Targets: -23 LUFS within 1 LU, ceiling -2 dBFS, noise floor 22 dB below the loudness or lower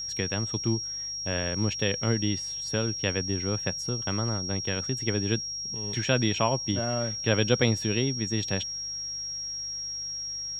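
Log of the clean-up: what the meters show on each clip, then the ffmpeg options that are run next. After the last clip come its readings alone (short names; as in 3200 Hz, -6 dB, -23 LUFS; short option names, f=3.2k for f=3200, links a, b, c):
hum 50 Hz; harmonics up to 150 Hz; hum level -54 dBFS; steady tone 5600 Hz; tone level -32 dBFS; loudness -28.0 LUFS; peak -8.0 dBFS; loudness target -23.0 LUFS
-> -af "bandreject=f=50:t=h:w=4,bandreject=f=100:t=h:w=4,bandreject=f=150:t=h:w=4"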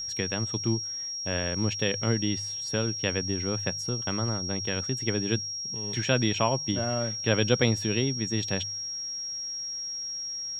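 hum none; steady tone 5600 Hz; tone level -32 dBFS
-> -af "bandreject=f=5.6k:w=30"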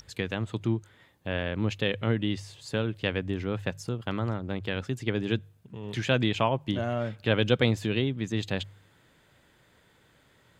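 steady tone none; loudness -29.5 LUFS; peak -7.5 dBFS; loudness target -23.0 LUFS
-> -af "volume=6.5dB,alimiter=limit=-2dB:level=0:latency=1"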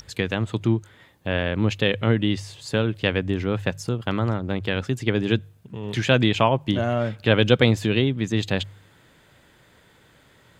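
loudness -23.0 LUFS; peak -2.0 dBFS; noise floor -56 dBFS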